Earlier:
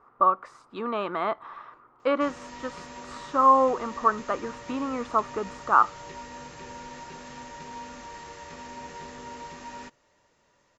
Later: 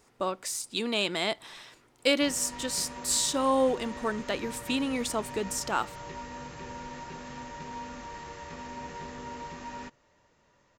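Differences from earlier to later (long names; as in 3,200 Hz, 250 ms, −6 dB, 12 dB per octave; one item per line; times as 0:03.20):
speech: remove low-pass with resonance 1,200 Hz, resonance Q 7.7
master: add bass and treble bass +4 dB, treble −3 dB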